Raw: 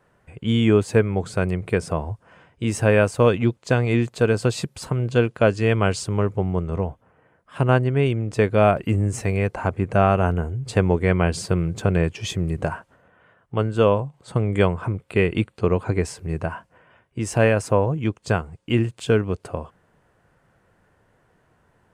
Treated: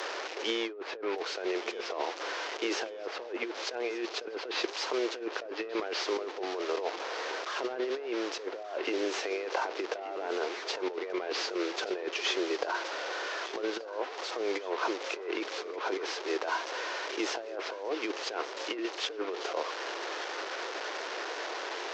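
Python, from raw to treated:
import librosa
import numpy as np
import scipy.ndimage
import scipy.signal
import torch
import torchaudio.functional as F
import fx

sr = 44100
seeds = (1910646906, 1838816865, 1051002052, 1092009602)

p1 = fx.delta_mod(x, sr, bps=32000, step_db=-32.5)
p2 = scipy.signal.sosfilt(scipy.signal.butter(8, 340.0, 'highpass', fs=sr, output='sos'), p1)
p3 = fx.env_lowpass_down(p2, sr, base_hz=1600.0, full_db=-16.5)
p4 = fx.over_compress(p3, sr, threshold_db=-32.0, ratio=-1.0)
p5 = p4 + fx.echo_feedback(p4, sr, ms=1182, feedback_pct=41, wet_db=-16, dry=0)
y = p5 * 10.0 ** (-2.5 / 20.0)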